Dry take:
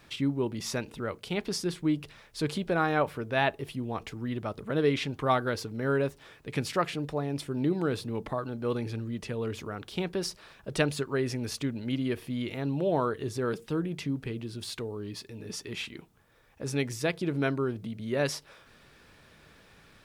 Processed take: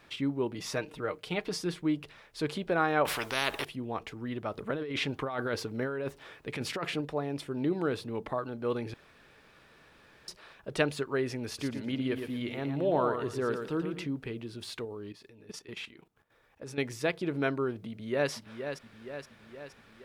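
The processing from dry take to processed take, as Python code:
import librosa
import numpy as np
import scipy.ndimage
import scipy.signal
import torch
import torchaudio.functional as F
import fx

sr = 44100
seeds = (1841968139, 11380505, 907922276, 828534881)

y = fx.comb(x, sr, ms=6.5, depth=0.51, at=(0.54, 1.79))
y = fx.spectral_comp(y, sr, ratio=4.0, at=(3.05, 3.65))
y = fx.over_compress(y, sr, threshold_db=-31.0, ratio=-1.0, at=(4.52, 7.01))
y = fx.echo_feedback(y, sr, ms=115, feedback_pct=28, wet_db=-7, at=(11.47, 14.08))
y = fx.level_steps(y, sr, step_db=13, at=(14.85, 16.78))
y = fx.echo_throw(y, sr, start_s=17.89, length_s=0.42, ms=470, feedback_pct=60, wet_db=-8.0)
y = fx.edit(y, sr, fx.room_tone_fill(start_s=8.94, length_s=1.34), tone=tone)
y = fx.bass_treble(y, sr, bass_db=-6, treble_db=-6)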